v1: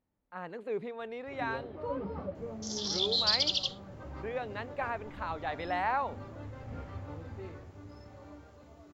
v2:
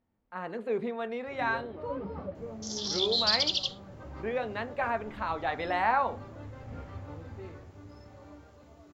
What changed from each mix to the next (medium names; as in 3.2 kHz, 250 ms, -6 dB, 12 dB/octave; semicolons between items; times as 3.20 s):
reverb: on, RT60 0.35 s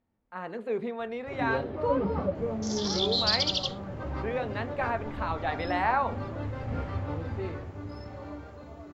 first sound +9.5 dB